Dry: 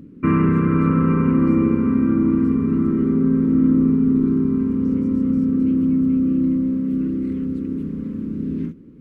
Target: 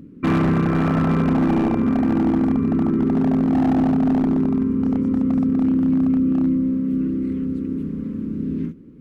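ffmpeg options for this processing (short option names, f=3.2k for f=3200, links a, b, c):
-af "aeval=exprs='0.237*(abs(mod(val(0)/0.237+3,4)-2)-1)':c=same"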